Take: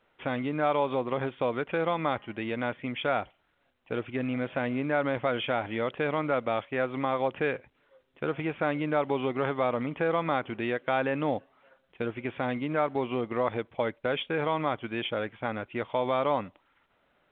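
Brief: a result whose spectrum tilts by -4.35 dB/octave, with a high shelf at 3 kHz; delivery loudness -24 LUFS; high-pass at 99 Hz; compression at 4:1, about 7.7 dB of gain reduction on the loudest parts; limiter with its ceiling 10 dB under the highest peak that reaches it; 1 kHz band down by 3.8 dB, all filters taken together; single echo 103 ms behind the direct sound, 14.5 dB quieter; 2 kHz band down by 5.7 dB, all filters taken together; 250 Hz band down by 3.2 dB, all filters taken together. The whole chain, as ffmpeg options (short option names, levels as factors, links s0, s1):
-af "highpass=99,equalizer=f=250:t=o:g=-3.5,equalizer=f=1000:t=o:g=-3.5,equalizer=f=2000:t=o:g=-8.5,highshelf=f=3000:g=5.5,acompressor=threshold=0.02:ratio=4,alimiter=level_in=2.11:limit=0.0631:level=0:latency=1,volume=0.473,aecho=1:1:103:0.188,volume=7.94"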